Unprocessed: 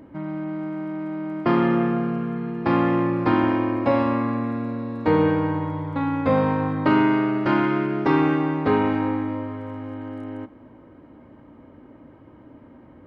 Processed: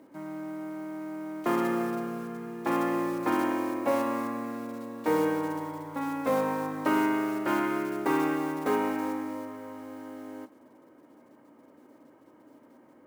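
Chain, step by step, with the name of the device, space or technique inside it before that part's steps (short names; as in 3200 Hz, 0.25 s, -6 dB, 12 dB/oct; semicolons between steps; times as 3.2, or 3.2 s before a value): early digital voice recorder (BPF 280–3500 Hz; block floating point 5-bit); gain -5.5 dB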